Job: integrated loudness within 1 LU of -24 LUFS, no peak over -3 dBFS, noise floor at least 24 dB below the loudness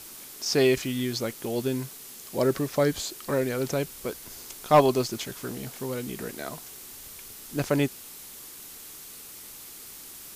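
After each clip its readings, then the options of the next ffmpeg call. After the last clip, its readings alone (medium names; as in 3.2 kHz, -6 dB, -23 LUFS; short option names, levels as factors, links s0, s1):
noise floor -44 dBFS; noise floor target -52 dBFS; loudness -27.5 LUFS; peak level -8.5 dBFS; loudness target -24.0 LUFS
-> -af "afftdn=nr=8:nf=-44"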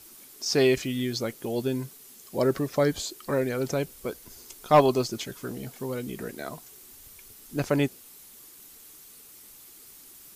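noise floor -50 dBFS; noise floor target -52 dBFS
-> -af "afftdn=nr=6:nf=-50"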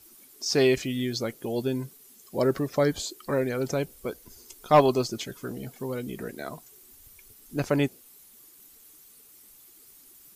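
noise floor -54 dBFS; loudness -27.5 LUFS; peak level -9.0 dBFS; loudness target -24.0 LUFS
-> -af "volume=1.5"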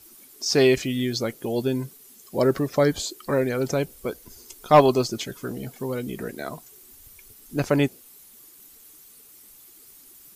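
loudness -24.0 LUFS; peak level -5.5 dBFS; noise floor -50 dBFS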